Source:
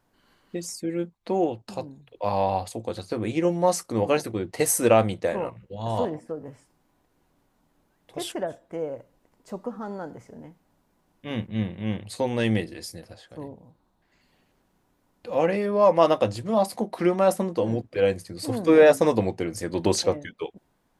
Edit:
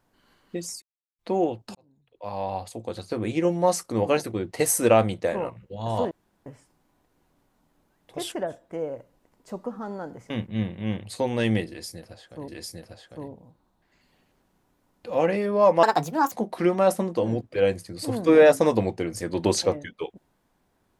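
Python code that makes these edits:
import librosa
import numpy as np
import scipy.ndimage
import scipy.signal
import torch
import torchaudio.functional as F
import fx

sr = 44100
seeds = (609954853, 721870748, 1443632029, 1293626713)

y = fx.edit(x, sr, fx.silence(start_s=0.82, length_s=0.37),
    fx.fade_in_span(start_s=1.75, length_s=1.43),
    fx.room_tone_fill(start_s=6.11, length_s=0.35),
    fx.cut(start_s=10.3, length_s=1.0),
    fx.repeat(start_s=12.68, length_s=0.8, count=2),
    fx.speed_span(start_s=16.03, length_s=0.69, speed=1.42), tone=tone)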